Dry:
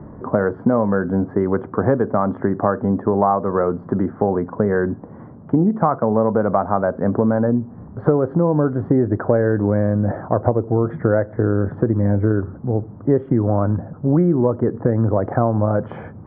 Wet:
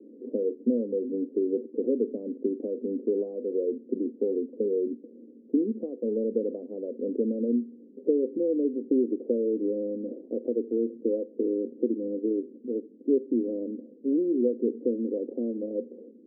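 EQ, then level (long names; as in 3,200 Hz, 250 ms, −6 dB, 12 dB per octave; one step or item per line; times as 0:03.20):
Chebyshev band-pass filter 230–510 Hz, order 4
−6.0 dB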